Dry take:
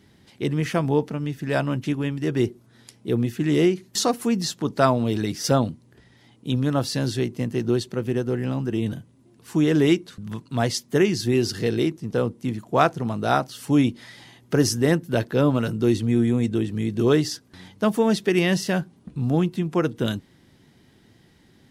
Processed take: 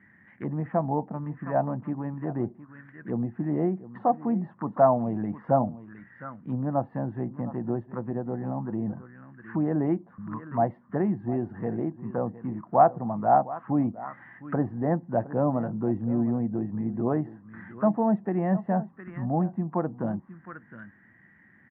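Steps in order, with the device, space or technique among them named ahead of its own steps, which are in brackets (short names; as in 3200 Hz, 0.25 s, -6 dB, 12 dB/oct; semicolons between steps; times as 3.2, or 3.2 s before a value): 4.92–5.4 bell 2700 Hz +4 dB 1 oct; echo 0.713 s -16 dB; envelope filter bass rig (envelope low-pass 760–1900 Hz down, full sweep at -20.5 dBFS; speaker cabinet 76–2300 Hz, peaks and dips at 200 Hz +7 dB, 420 Hz -9 dB, 1100 Hz +4 dB, 1800 Hz +8 dB); gain -7.5 dB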